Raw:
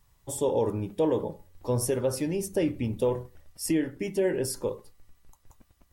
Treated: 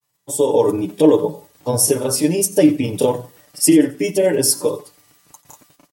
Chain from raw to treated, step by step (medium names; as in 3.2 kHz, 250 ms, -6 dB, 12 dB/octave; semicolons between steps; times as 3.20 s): gate -59 dBFS, range -9 dB; high-pass 190 Hz 12 dB/octave; treble shelf 3.6 kHz +7.5 dB; comb 6.8 ms, depth 69%; dynamic bell 1.8 kHz, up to -6 dB, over -45 dBFS, Q 0.88; level rider gain up to 11 dB; granulator, spray 23 ms, pitch spread up and down by 0 st; thinning echo 89 ms, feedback 35%, high-pass 910 Hz, level -20 dB; trim +3 dB